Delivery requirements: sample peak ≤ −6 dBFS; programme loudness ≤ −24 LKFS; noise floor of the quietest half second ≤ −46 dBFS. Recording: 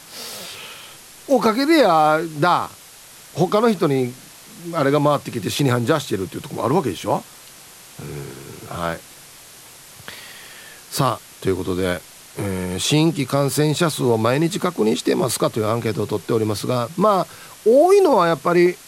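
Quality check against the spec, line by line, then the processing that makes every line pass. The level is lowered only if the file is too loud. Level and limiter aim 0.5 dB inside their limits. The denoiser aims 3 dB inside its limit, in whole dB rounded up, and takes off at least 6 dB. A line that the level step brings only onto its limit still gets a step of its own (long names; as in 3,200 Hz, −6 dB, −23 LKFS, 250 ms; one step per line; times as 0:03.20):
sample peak −4.0 dBFS: out of spec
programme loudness −19.5 LKFS: out of spec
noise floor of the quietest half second −43 dBFS: out of spec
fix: level −5 dB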